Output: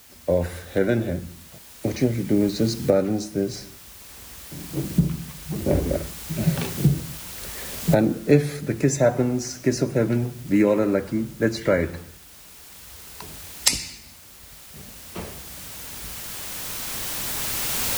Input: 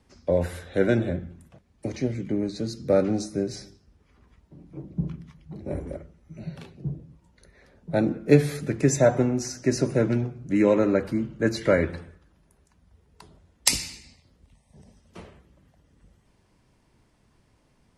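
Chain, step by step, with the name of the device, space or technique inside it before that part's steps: cheap recorder with automatic gain (white noise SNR 23 dB; recorder AGC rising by 6.1 dB/s)

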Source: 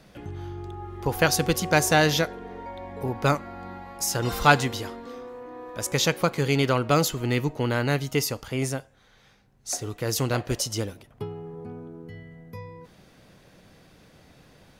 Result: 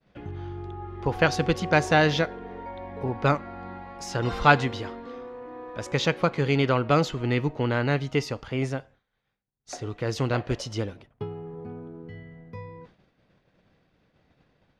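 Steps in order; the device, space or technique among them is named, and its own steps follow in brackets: hearing-loss simulation (low-pass 3.5 kHz 12 dB/octave; expander -45 dBFS)

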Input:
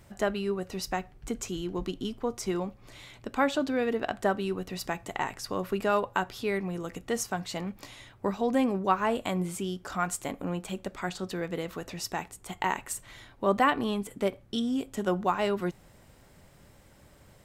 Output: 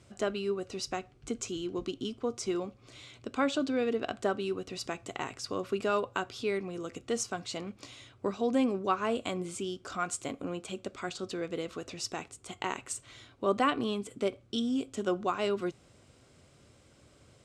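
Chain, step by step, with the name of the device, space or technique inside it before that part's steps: car door speaker (cabinet simulation 86–8700 Hz, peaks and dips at 180 Hz -9 dB, 600 Hz -3 dB, 880 Hz -10 dB, 1.8 kHz -9 dB)

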